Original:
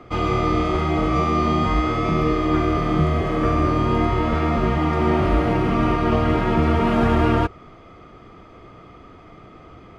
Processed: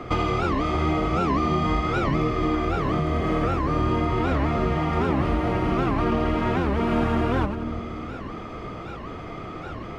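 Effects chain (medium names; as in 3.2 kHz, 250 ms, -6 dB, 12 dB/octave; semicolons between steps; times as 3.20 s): compression 8:1, threshold -29 dBFS, peak gain reduction 15 dB; two-band feedback delay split 580 Hz, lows 332 ms, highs 84 ms, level -7 dB; warped record 78 rpm, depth 250 cents; trim +8 dB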